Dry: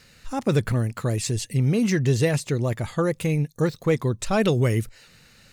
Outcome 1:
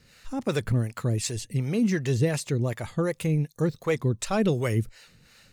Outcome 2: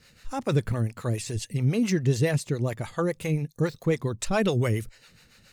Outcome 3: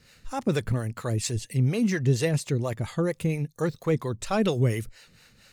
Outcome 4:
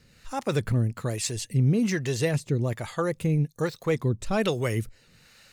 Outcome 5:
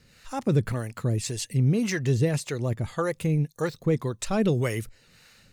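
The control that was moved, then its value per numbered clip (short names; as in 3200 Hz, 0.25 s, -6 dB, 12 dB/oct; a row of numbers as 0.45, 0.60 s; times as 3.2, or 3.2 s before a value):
harmonic tremolo, rate: 2.7, 7.2, 4.3, 1.2, 1.8 Hz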